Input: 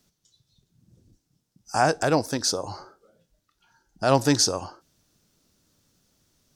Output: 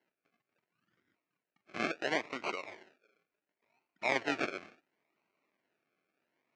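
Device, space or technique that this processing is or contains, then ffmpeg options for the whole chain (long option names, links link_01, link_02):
circuit-bent sampling toy: -af "acrusher=samples=36:mix=1:aa=0.000001:lfo=1:lforange=21.6:lforate=0.71,highpass=440,equalizer=frequency=510:width_type=q:width=4:gain=-6,equalizer=frequency=820:width_type=q:width=4:gain=-6,equalizer=frequency=2300:width_type=q:width=4:gain=7,equalizer=frequency=3500:width_type=q:width=4:gain=-6,equalizer=frequency=4900:width_type=q:width=4:gain=-4,lowpass=frequency=5200:width=0.5412,lowpass=frequency=5200:width=1.3066,volume=-7.5dB"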